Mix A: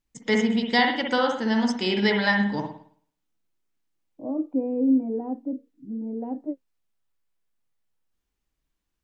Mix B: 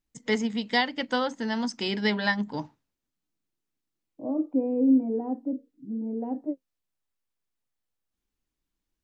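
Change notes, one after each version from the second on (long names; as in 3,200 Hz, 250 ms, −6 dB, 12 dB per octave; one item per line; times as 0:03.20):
reverb: off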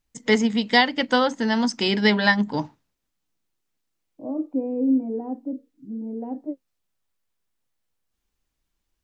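first voice +7.0 dB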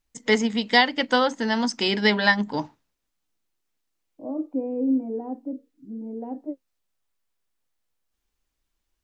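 master: add parametric band 140 Hz −5 dB 1.7 octaves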